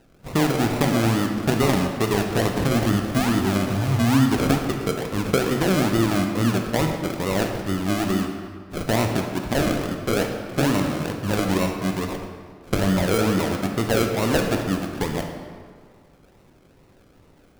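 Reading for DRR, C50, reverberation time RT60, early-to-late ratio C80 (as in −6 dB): 3.0 dB, 4.5 dB, 1.9 s, 6.0 dB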